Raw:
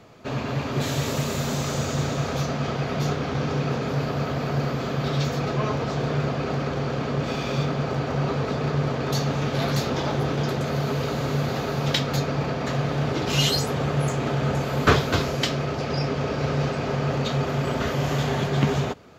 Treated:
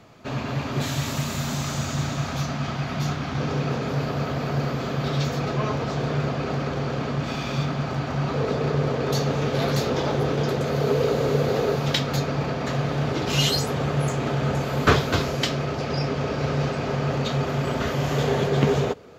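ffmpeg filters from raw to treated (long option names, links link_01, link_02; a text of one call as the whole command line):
ffmpeg -i in.wav -af "asetnsamples=nb_out_samples=441:pad=0,asendcmd='0.86 equalizer g -12;3.38 equalizer g -1;7.11 equalizer g -7;8.34 equalizer g 5;10.81 equalizer g 11;11.76 equalizer g 0;18.16 equalizer g 8',equalizer=frequency=460:width_type=o:width=0.57:gain=-4" out.wav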